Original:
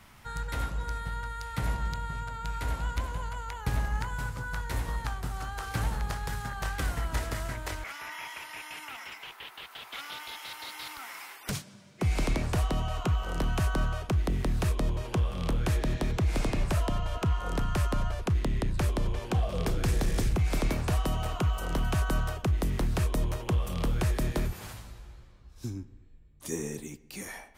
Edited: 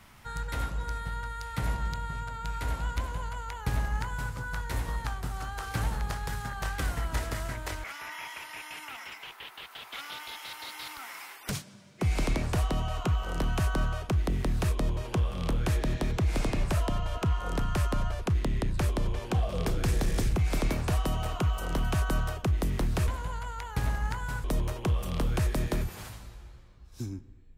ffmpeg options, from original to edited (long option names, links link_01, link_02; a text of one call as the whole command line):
ffmpeg -i in.wav -filter_complex "[0:a]asplit=3[link_01][link_02][link_03];[link_01]atrim=end=23.082[link_04];[link_02]atrim=start=2.978:end=4.342[link_05];[link_03]atrim=start=23.078[link_06];[link_04][link_05]acrossfade=duration=0.004:curve1=hsin:curve2=hsin[link_07];[link_07][link_06]acrossfade=duration=0.004:curve1=hsin:curve2=hsin" out.wav